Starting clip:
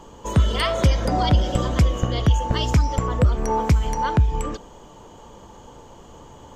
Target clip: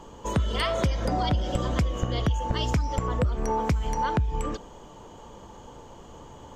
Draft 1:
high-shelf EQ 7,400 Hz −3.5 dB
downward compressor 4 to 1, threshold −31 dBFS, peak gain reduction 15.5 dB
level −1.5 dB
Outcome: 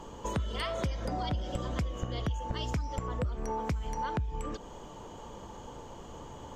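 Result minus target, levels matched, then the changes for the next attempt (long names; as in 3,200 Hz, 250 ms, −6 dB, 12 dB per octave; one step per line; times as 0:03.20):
downward compressor: peak gain reduction +8 dB
change: downward compressor 4 to 1, threshold −20.5 dBFS, peak gain reduction 8 dB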